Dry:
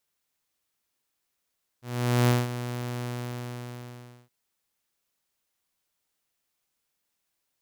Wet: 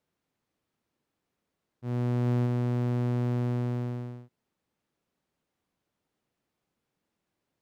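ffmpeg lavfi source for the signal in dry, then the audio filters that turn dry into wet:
-f lavfi -i "aevalsrc='0.168*(2*mod(122*t,1)-1)':duration=2.47:sample_rate=44100,afade=type=in:duration=0.462,afade=type=out:start_time=0.462:duration=0.189:silence=0.237,afade=type=out:start_time=1.23:duration=1.24"
-af "lowpass=frequency=2300:poles=1,equalizer=frequency=190:width=0.34:gain=12,areverse,acompressor=threshold=-24dB:ratio=8,areverse"

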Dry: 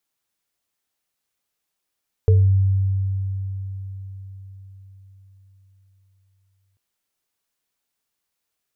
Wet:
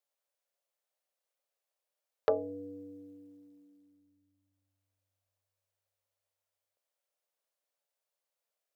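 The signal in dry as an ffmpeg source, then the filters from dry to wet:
-f lavfi -i "aevalsrc='0.316*pow(10,-3*t/4.87)*sin(2*PI*96.6*t)+0.141*pow(10,-3*t/0.32)*sin(2*PI*442*t)':duration=4.49:sample_rate=44100"
-af "acompressor=threshold=-32dB:ratio=2,aeval=exprs='0.178*(cos(1*acos(clip(val(0)/0.178,-1,1)))-cos(1*PI/2))+0.0224*(cos(2*acos(clip(val(0)/0.178,-1,1)))-cos(2*PI/2))+0.01*(cos(5*acos(clip(val(0)/0.178,-1,1)))-cos(5*PI/2))+0.0398*(cos(7*acos(clip(val(0)/0.178,-1,1)))-cos(7*PI/2))':channel_layout=same,highpass=frequency=560:width_type=q:width=4.9"

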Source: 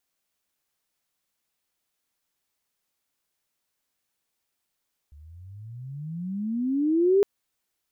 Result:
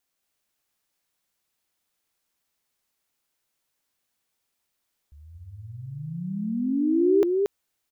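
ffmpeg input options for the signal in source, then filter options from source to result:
-f lavfi -i "aevalsrc='pow(10,(-15+30.5*(t/2.11-1))/20)*sin(2*PI*70.5*2.11/(30.5*log(2)/12)*(exp(30.5*log(2)/12*t/2.11)-1))':duration=2.11:sample_rate=44100"
-af "aecho=1:1:230:0.668"

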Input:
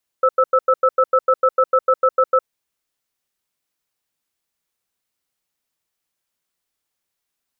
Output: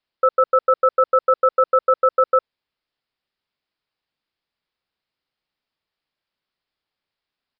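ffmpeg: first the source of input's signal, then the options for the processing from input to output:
-f lavfi -i "aevalsrc='0.211*(sin(2*PI*520*t)+sin(2*PI*1310*t))*clip(min(mod(t,0.15),0.06-mod(t,0.15))/0.005,0,1)':duration=2.16:sample_rate=44100"
-af "aresample=11025,aresample=44100"

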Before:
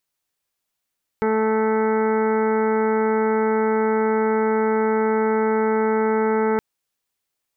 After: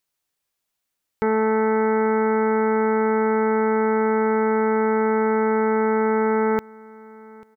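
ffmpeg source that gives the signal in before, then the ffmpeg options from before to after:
-f lavfi -i "aevalsrc='0.0708*sin(2*PI*219*t)+0.112*sin(2*PI*438*t)+0.015*sin(2*PI*657*t)+0.0531*sin(2*PI*876*t)+0.0106*sin(2*PI*1095*t)+0.0299*sin(2*PI*1314*t)+0.0188*sin(2*PI*1533*t)+0.00794*sin(2*PI*1752*t)+0.0141*sin(2*PI*1971*t)+0.0106*sin(2*PI*2190*t)':duration=5.37:sample_rate=44100"
-af "aecho=1:1:841|1682:0.0708|0.0149"

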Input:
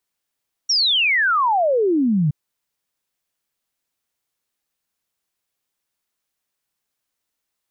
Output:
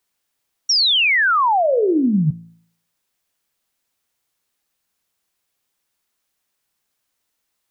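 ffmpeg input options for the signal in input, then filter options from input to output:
-f lavfi -i "aevalsrc='0.188*clip(min(t,1.62-t)/0.01,0,1)*sin(2*PI*5800*1.62/log(140/5800)*(exp(log(140/5800)*t/1.62)-1))':duration=1.62:sample_rate=44100"
-filter_complex "[0:a]bandreject=frequency=56.06:width_type=h:width=4,bandreject=frequency=112.12:width_type=h:width=4,bandreject=frequency=168.18:width_type=h:width=4,bandreject=frequency=224.24:width_type=h:width=4,bandreject=frequency=280.3:width_type=h:width=4,bandreject=frequency=336.36:width_type=h:width=4,bandreject=frequency=392.42:width_type=h:width=4,bandreject=frequency=448.48:width_type=h:width=4,bandreject=frequency=504.54:width_type=h:width=4,bandreject=frequency=560.6:width_type=h:width=4,bandreject=frequency=616.66:width_type=h:width=4,bandreject=frequency=672.72:width_type=h:width=4,asplit=2[link_01][link_02];[link_02]acompressor=threshold=-28dB:ratio=6,volume=-2dB[link_03];[link_01][link_03]amix=inputs=2:normalize=0"

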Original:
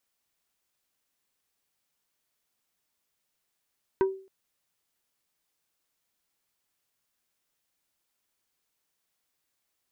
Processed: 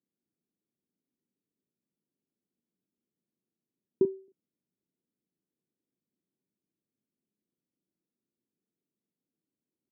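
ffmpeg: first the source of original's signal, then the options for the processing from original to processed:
-f lavfi -i "aevalsrc='0.133*pow(10,-3*t/0.41)*sin(2*PI*384*t)+0.0562*pow(10,-3*t/0.137)*sin(2*PI*960*t)+0.0237*pow(10,-3*t/0.078)*sin(2*PI*1536*t)+0.01*pow(10,-3*t/0.059)*sin(2*PI*1920*t)+0.00422*pow(10,-3*t/0.043)*sin(2*PI*2496*t)':duration=0.27:sample_rate=44100"
-filter_complex "[0:a]asuperpass=centerf=270:order=4:qfactor=1.2,aemphasis=mode=reproduction:type=riaa,asplit=2[link_01][link_02];[link_02]adelay=38,volume=-8dB[link_03];[link_01][link_03]amix=inputs=2:normalize=0"

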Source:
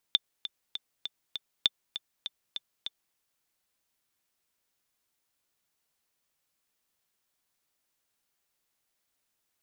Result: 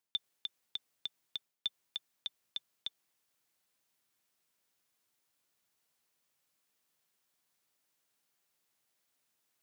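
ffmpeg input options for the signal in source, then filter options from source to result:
-f lavfi -i "aevalsrc='pow(10,(-8.5-12.5*gte(mod(t,5*60/199),60/199))/20)*sin(2*PI*3550*mod(t,60/199))*exp(-6.91*mod(t,60/199)/0.03)':duration=3.01:sample_rate=44100"
-af "highpass=frequency=92:width=0.5412,highpass=frequency=92:width=1.3066,areverse,acompressor=threshold=-34dB:ratio=6,areverse"

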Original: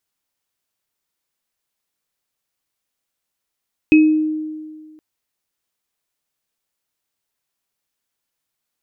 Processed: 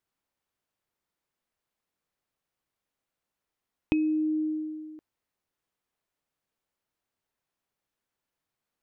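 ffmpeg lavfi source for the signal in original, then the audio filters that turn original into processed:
-f lavfi -i "aevalsrc='0.531*pow(10,-3*t/1.73)*sin(2*PI*310*t)+0.211*pow(10,-3*t/0.36)*sin(2*PI*2550*t)':duration=1.07:sample_rate=44100"
-af "highshelf=frequency=2700:gain=-12,acompressor=threshold=-25dB:ratio=6"

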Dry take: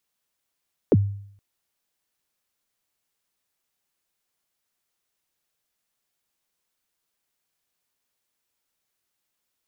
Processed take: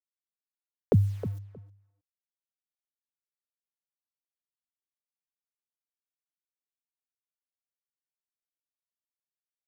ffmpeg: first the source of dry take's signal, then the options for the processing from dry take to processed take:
-f lavfi -i "aevalsrc='0.299*pow(10,-3*t/0.64)*sin(2*PI*(540*0.038/log(100/540)*(exp(log(100/540)*min(t,0.038)/0.038)-1)+100*max(t-0.038,0)))':duration=0.47:sample_rate=44100"
-filter_complex "[0:a]equalizer=frequency=310:width=2.6:gain=-13.5,acrusher=bits=8:mix=0:aa=0.000001,asplit=2[link_01][link_02];[link_02]adelay=314,lowpass=frequency=1300:poles=1,volume=-11dB,asplit=2[link_03][link_04];[link_04]adelay=314,lowpass=frequency=1300:poles=1,volume=0.18[link_05];[link_03][link_05]amix=inputs=2:normalize=0[link_06];[link_01][link_06]amix=inputs=2:normalize=0"

